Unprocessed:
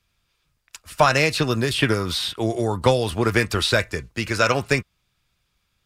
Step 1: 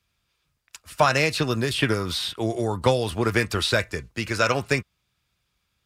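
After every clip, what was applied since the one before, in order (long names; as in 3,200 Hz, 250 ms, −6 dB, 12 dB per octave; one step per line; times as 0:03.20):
high-pass filter 42 Hz
level −2.5 dB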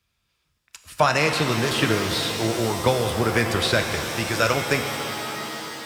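reverb with rising layers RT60 3.5 s, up +7 semitones, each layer −2 dB, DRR 6 dB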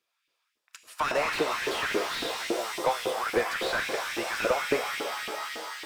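auto-filter high-pass saw up 3.6 Hz 310–2,600 Hz
slew-rate limiting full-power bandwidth 180 Hz
level −6 dB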